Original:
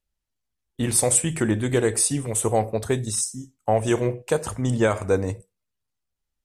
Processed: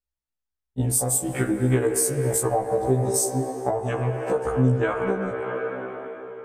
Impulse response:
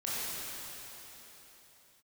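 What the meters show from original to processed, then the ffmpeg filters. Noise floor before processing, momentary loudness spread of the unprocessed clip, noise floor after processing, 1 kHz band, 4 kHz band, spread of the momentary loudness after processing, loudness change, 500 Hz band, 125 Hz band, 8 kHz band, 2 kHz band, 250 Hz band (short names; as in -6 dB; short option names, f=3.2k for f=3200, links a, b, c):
-82 dBFS, 7 LU, -85 dBFS, +1.0 dB, -7.5 dB, 9 LU, -1.0 dB, 0.0 dB, +2.0 dB, -2.0 dB, -0.5 dB, -0.5 dB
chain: -filter_complex "[0:a]afwtdn=0.0282,asplit=2[a][b];[b]acrossover=split=310 3000:gain=0.0891 1 0.1[c][d][e];[c][d][e]amix=inputs=3:normalize=0[f];[1:a]atrim=start_sample=2205[g];[f][g]afir=irnorm=-1:irlink=0,volume=-8.5dB[h];[a][h]amix=inputs=2:normalize=0,acompressor=threshold=-26dB:ratio=6,afftfilt=real='re*1.73*eq(mod(b,3),0)':imag='im*1.73*eq(mod(b,3),0)':win_size=2048:overlap=0.75,volume=9dB"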